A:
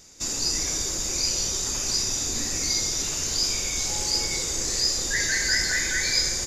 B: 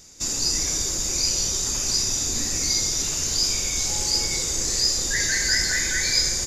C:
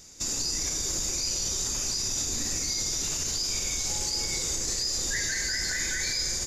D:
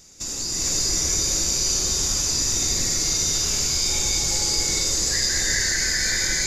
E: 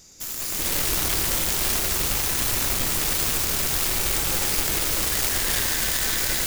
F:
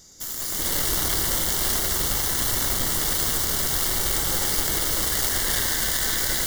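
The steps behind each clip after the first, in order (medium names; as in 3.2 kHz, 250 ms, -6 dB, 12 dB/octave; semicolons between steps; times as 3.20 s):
tone controls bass +3 dB, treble +3 dB
peak limiter -18.5 dBFS, peak gain reduction 10.5 dB; trim -1.5 dB
gated-style reverb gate 470 ms rising, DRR -6 dB
self-modulated delay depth 0.4 ms
Butterworth band-stop 2.5 kHz, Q 4.3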